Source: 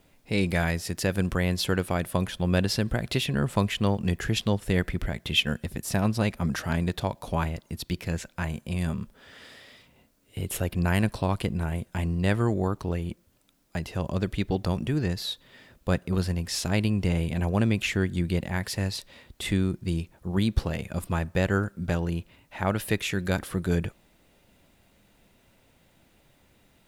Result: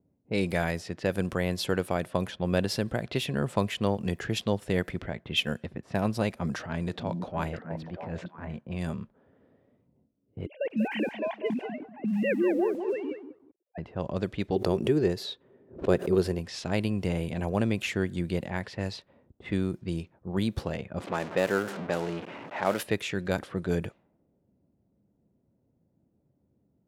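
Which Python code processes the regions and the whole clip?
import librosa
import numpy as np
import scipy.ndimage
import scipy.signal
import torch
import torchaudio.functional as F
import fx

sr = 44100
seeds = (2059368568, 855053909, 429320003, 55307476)

y = fx.chain(x, sr, fx.transient(attack_db=-8, sustain_db=2),
    fx.echo_stepped(ms=321, hz=220.0, octaves=1.4, feedback_pct=70, wet_db=-0.5), at=(6.57, 8.58))
y = fx.chain(y, sr, fx.sine_speech(),
    fx.fixed_phaser(hz=3000.0, stages=4),
    fx.echo_crushed(ms=193, feedback_pct=35, bits=8, wet_db=-7.5), at=(10.46, 13.78))
y = fx.chain(y, sr, fx.peak_eq(hz=390.0, db=12.5, octaves=0.48),
    fx.pre_swell(db_per_s=140.0), at=(14.56, 16.39))
y = fx.chain(y, sr, fx.zero_step(step_db=-27.5),
    fx.highpass(hz=230.0, slope=12), at=(21.0, 22.83))
y = scipy.signal.sosfilt(scipy.signal.butter(2, 94.0, 'highpass', fs=sr, output='sos'), y)
y = fx.env_lowpass(y, sr, base_hz=340.0, full_db=-23.0)
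y = fx.dynamic_eq(y, sr, hz=550.0, q=0.87, threshold_db=-40.0, ratio=4.0, max_db=5)
y = y * librosa.db_to_amplitude(-4.0)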